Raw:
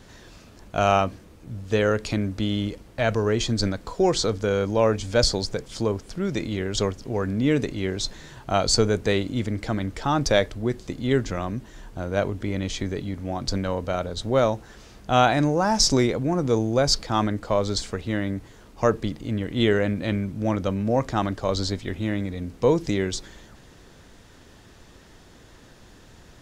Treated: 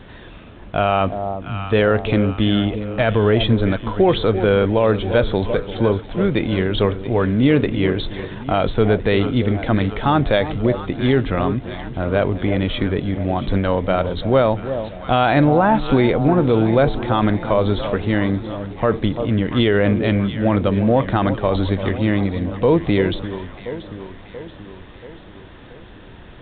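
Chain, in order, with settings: echo whose repeats swap between lows and highs 341 ms, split 910 Hz, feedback 73%, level -12 dB; peak limiter -13.5 dBFS, peak gain reduction 7.5 dB; trim +8 dB; µ-law 64 kbps 8 kHz

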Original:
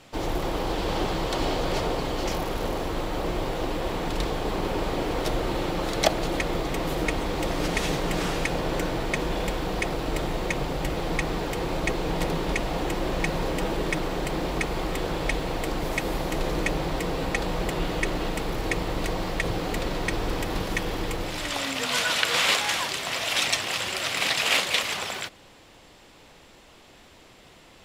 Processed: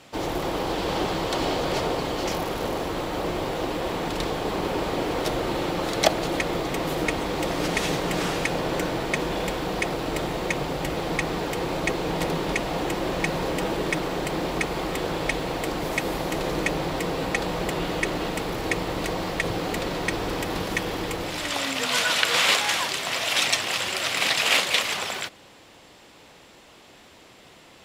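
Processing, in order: high-pass 110 Hz 6 dB/octave; trim +2 dB

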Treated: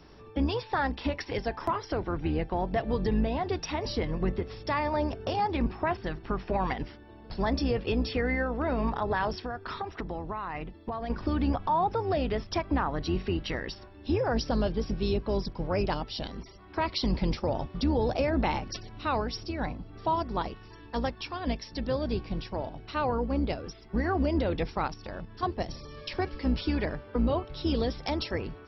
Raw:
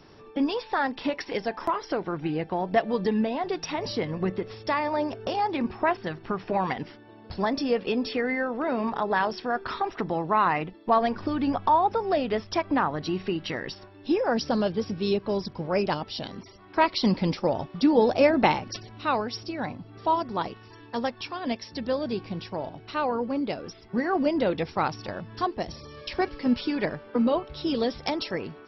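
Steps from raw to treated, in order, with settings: octave divider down 2 oct, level +1 dB; 24.86–25.43 s: level held to a coarse grid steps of 9 dB; peak limiter -16.5 dBFS, peak gain reduction 9 dB; 9.32–11.10 s: compression 6:1, threshold -30 dBFS, peak gain reduction 9 dB; trim -2 dB

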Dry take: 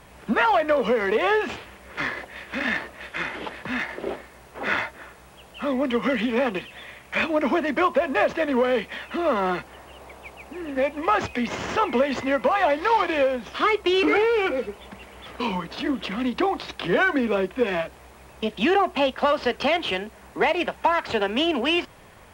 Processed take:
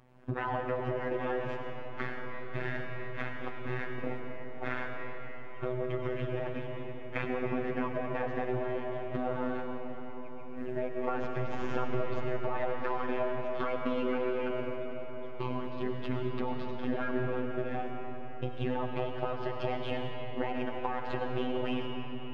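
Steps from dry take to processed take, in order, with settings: low-pass 1 kHz 6 dB/octave; bass shelf 230 Hz +3.5 dB; gate -34 dBFS, range -9 dB; compression, threshold -28 dBFS, peak gain reduction 11.5 dB; ring modulator 94 Hz; robot voice 126 Hz; on a send: reverberation RT60 4.9 s, pre-delay 55 ms, DRR 1 dB; on the sum: trim +1.5 dB

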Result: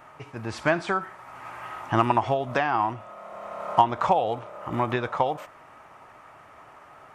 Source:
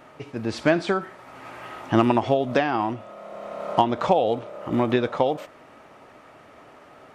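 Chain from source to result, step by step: graphic EQ 250/500/1000/4000 Hz -8/-6/+5/-6 dB

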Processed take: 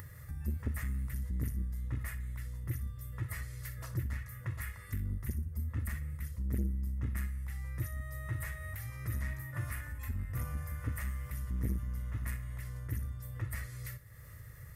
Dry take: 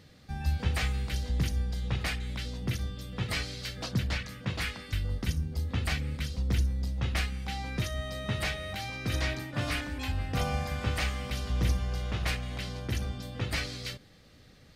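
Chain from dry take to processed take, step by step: FFT filter 120 Hz 0 dB, 230 Hz -28 dB, 390 Hz -19 dB, 1.9 kHz -6 dB, 2.7 kHz -21 dB, 4.2 kHz -25 dB, 12 kHz +6 dB; upward compressor, threshold -33 dBFS; comb of notches 770 Hz; flutter echo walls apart 10.6 m, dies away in 0.27 s; transformer saturation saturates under 190 Hz

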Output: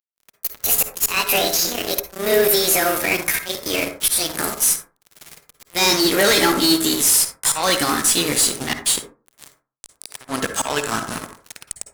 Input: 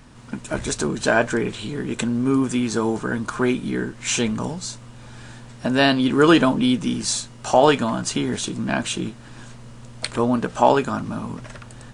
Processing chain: pitch bend over the whole clip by +10 st ending unshifted; slow attack 312 ms; pre-emphasis filter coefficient 0.9; fuzz box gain 39 dB, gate -45 dBFS; reverberation RT60 0.35 s, pre-delay 47 ms, DRR 7.5 dB

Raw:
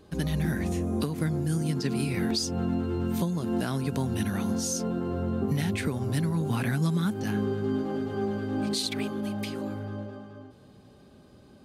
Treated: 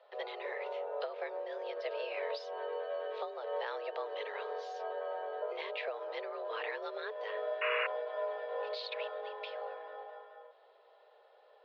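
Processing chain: painted sound noise, 7.61–7.87 s, 720–2700 Hz -29 dBFS; mistuned SSB +220 Hz 280–3600 Hz; trim -5 dB

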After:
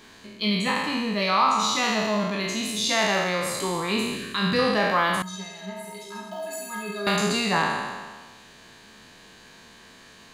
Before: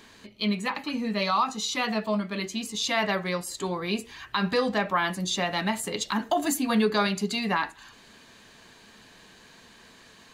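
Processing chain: spectral sustain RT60 1.51 s; 4.16–4.59 s: peaking EQ 890 Hz -13.5 dB 0.52 oct; 5.22–7.07 s: inharmonic resonator 190 Hz, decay 0.36 s, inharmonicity 0.03

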